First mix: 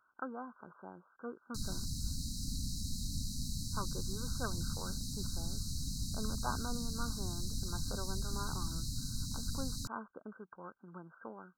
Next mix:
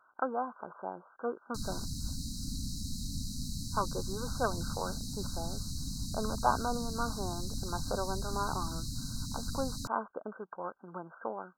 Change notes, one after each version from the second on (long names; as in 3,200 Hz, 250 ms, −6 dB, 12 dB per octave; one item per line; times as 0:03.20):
master: add parametric band 690 Hz +14 dB 1.9 octaves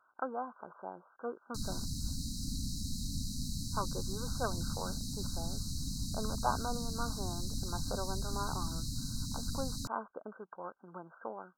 speech −4.5 dB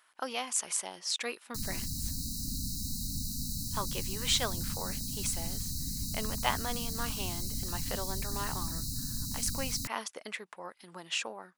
speech: remove linear-phase brick-wall low-pass 1,600 Hz
background: remove high-frequency loss of the air 50 metres